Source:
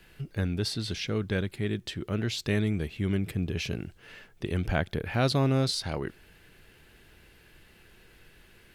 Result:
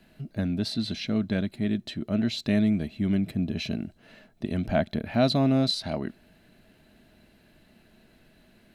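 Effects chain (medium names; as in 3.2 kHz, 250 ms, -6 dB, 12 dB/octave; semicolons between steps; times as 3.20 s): small resonant body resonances 230/630/4000 Hz, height 16 dB, ringing for 35 ms; dynamic bell 2.7 kHz, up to +5 dB, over -39 dBFS, Q 0.72; trim -6.5 dB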